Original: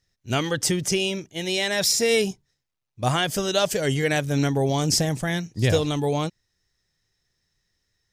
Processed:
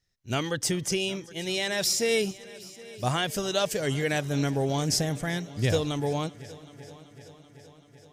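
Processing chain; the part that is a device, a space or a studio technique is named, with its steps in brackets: multi-head tape echo (multi-head delay 383 ms, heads first and second, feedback 63%, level -23 dB; wow and flutter 8.3 cents); trim -4.5 dB

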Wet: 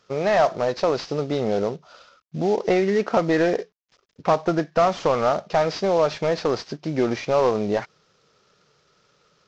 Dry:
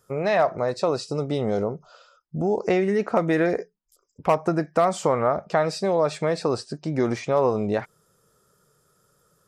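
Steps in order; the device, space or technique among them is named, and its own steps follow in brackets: early wireless headset (high-pass 180 Hz 6 dB/octave; CVSD coder 32 kbps); trim +3 dB

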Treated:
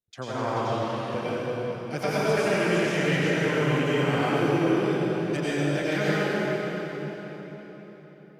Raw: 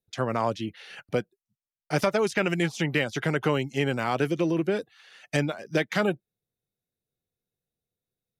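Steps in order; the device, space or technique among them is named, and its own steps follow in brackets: cathedral (reverberation RT60 4.5 s, pre-delay 84 ms, DRR -10.5 dB); trim -8.5 dB

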